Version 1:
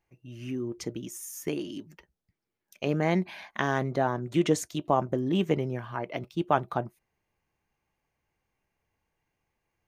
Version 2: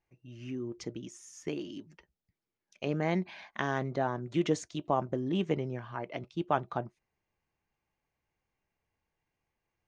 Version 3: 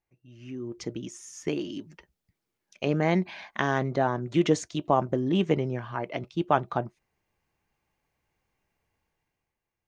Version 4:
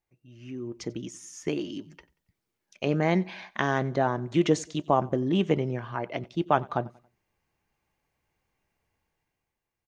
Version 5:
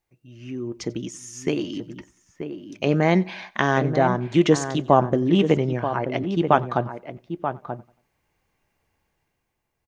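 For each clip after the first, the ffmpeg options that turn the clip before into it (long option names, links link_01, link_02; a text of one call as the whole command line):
ffmpeg -i in.wav -af "lowpass=frequency=6800:width=0.5412,lowpass=frequency=6800:width=1.3066,volume=-4.5dB" out.wav
ffmpeg -i in.wav -af "dynaudnorm=framelen=110:gausssize=13:maxgain=10dB,volume=-3.5dB" out.wav
ffmpeg -i in.wav -af "aecho=1:1:92|184|276:0.0708|0.0276|0.0108" out.wav
ffmpeg -i in.wav -filter_complex "[0:a]asplit=2[link_01][link_02];[link_02]adelay=932.9,volume=-8dB,highshelf=frequency=4000:gain=-21[link_03];[link_01][link_03]amix=inputs=2:normalize=0,volume=5.5dB" out.wav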